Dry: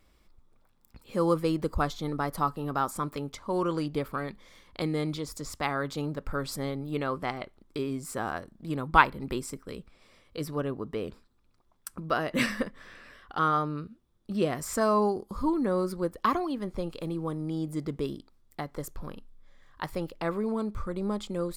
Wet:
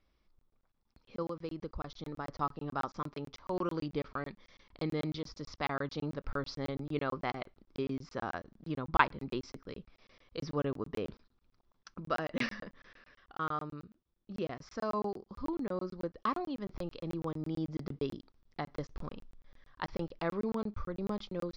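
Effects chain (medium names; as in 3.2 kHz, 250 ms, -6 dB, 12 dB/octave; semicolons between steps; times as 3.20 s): gain riding within 5 dB 2 s; steep low-pass 5.9 kHz 72 dB/octave; 1.22–2.26 s: compression, threshold -29 dBFS, peak gain reduction 7 dB; crackling interface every 0.11 s, samples 1024, zero, from 0.39 s; trim -6.5 dB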